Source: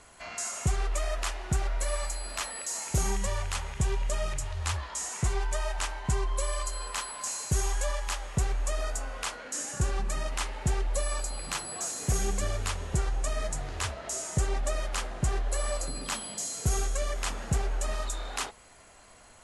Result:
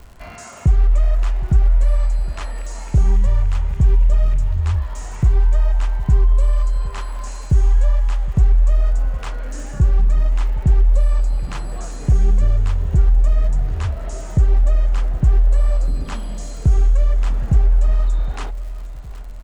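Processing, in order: RIAA curve playback; feedback delay 764 ms, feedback 42%, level -19 dB; resampled via 22.05 kHz; crackle 130 per s -40 dBFS; in parallel at +1.5 dB: compression, threshold -24 dBFS, peak gain reduction 16 dB; on the sum: trim -3 dB

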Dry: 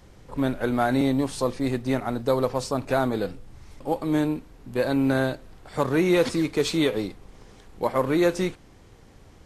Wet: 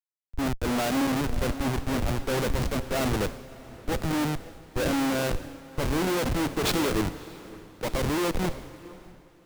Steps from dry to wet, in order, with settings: Schmitt trigger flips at -27 dBFS; echo that smears into a reverb 632 ms, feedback 54%, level -9.5 dB; three bands expanded up and down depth 100%

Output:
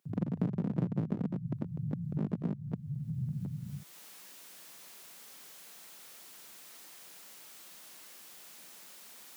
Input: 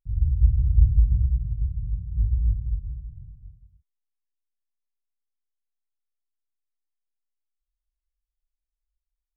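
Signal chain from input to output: one-sided wavefolder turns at -19.5 dBFS; recorder AGC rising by 28 dB/s; steep high-pass 150 Hz 36 dB/octave; compression 2:1, threshold -56 dBFS, peak gain reduction 17.5 dB; trim +14 dB

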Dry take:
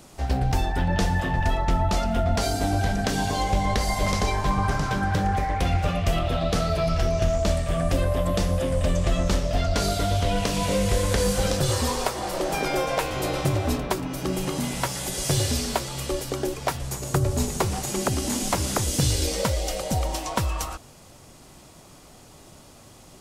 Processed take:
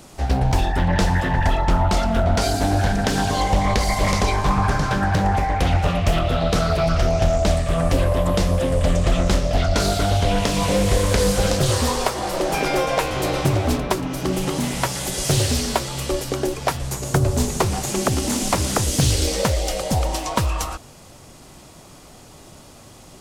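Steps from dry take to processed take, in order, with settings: loudspeaker Doppler distortion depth 0.38 ms; trim +4.5 dB

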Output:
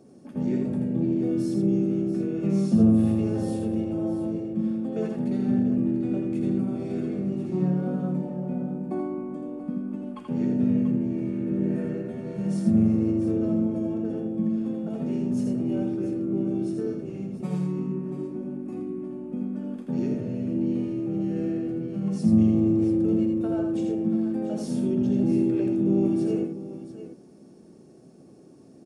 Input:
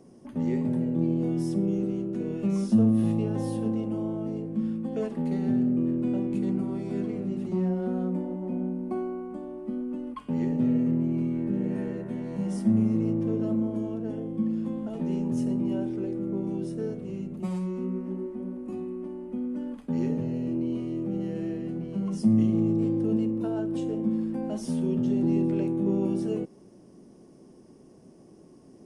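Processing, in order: comb of notches 1 kHz; harmony voices -4 st -7 dB; multi-tap echo 82/686 ms -4.5/-11.5 dB

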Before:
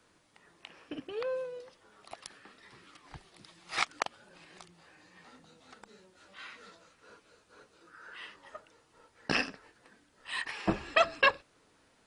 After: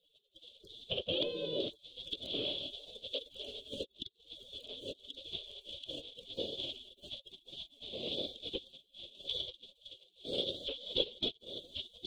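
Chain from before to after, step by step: thinning echo 1085 ms, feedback 61%, high-pass 890 Hz, level -12.5 dB; compression 5:1, threshold -45 dBFS, peak gain reduction 22.5 dB; high-pass 59 Hz 24 dB/octave; waveshaping leveller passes 3; spectral gate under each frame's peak -20 dB weak; FFT filter 170 Hz 0 dB, 540 Hz +14 dB, 810 Hz -15 dB, 1.9 kHz -30 dB, 3.4 kHz +13 dB, 5.2 kHz -20 dB, 9.6 kHz -27 dB; trim +11.5 dB

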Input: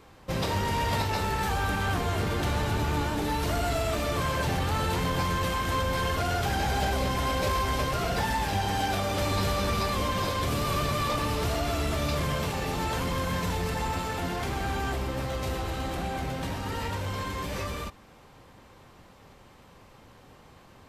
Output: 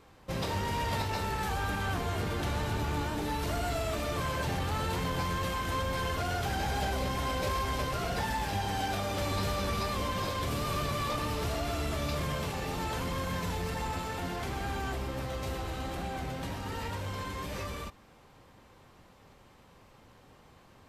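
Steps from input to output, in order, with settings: wow and flutter 18 cents; trim -4.5 dB

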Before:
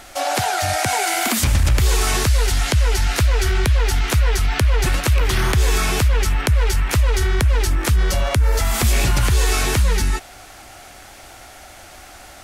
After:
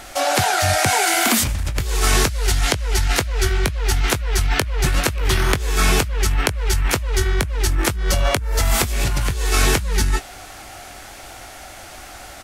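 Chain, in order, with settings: compressor with a negative ratio -18 dBFS, ratio -0.5; doubling 21 ms -11.5 dB

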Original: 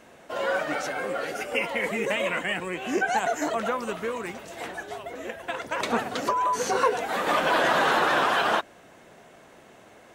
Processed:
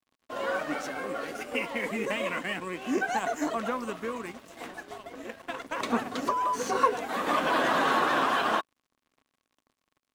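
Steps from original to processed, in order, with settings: crossover distortion -44.5 dBFS; small resonant body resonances 260/1100 Hz, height 8 dB, ringing for 35 ms; trim -4 dB

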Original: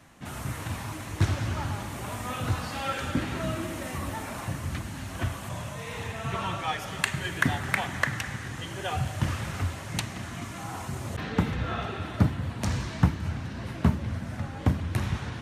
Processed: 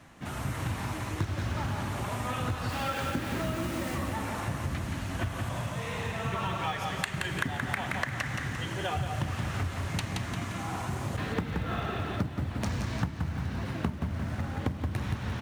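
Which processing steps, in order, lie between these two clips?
2.68–3.94 s: added noise white -45 dBFS; treble shelf 6.2 kHz -6.5 dB; in parallel at -8 dB: short-mantissa float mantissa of 2-bit; on the sum: feedback delay 174 ms, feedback 41%, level -6 dB; compression 6:1, threshold -26 dBFS, peak gain reduction 13.5 dB; trim -1.5 dB

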